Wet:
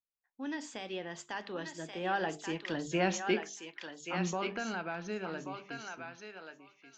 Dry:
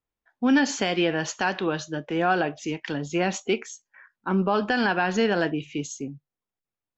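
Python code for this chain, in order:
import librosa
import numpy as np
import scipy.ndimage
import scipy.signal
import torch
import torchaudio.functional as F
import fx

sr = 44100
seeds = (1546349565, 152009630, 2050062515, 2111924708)

p1 = fx.doppler_pass(x, sr, speed_mps=26, closest_m=15.0, pass_at_s=3.01)
p2 = fx.hum_notches(p1, sr, base_hz=50, count=9)
p3 = p2 + fx.echo_thinned(p2, sr, ms=1132, feedback_pct=16, hz=880.0, wet_db=-3.5, dry=0)
y = F.gain(torch.from_numpy(p3), -4.5).numpy()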